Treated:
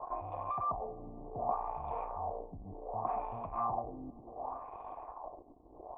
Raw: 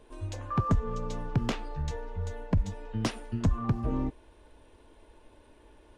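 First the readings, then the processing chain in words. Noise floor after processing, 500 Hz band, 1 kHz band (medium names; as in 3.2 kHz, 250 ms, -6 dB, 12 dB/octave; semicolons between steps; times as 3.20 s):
-56 dBFS, -1.5 dB, +3.5 dB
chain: in parallel at -9.5 dB: fuzz box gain 48 dB, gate -57 dBFS; on the sum: dynamic bell 1.5 kHz, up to -6 dB, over -42 dBFS, Q 1.5; thinning echo 492 ms, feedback 47%, high-pass 370 Hz, level -8.5 dB; LFO low-pass sine 0.67 Hz 260–3100 Hz; peaking EQ 230 Hz -3 dB 0.43 oct; reverse; compression, threshold -19 dBFS, peak gain reduction 6.5 dB; reverse; cascade formant filter a; random flutter of the level, depth 55%; trim +5.5 dB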